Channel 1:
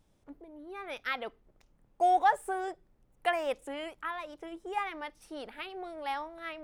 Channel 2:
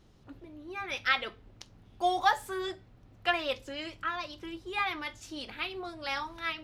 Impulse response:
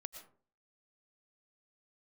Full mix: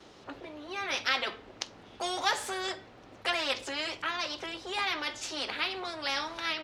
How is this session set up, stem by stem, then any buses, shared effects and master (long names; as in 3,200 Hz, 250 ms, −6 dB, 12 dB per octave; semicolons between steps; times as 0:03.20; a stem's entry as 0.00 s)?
−4.5 dB, 0.00 s, no send, no processing
−0.5 dB, 4.1 ms, no send, no processing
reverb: not used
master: high-pass filter 50 Hz; three-way crossover with the lows and the highs turned down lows −18 dB, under 300 Hz, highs −17 dB, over 7,700 Hz; every bin compressed towards the loudest bin 2 to 1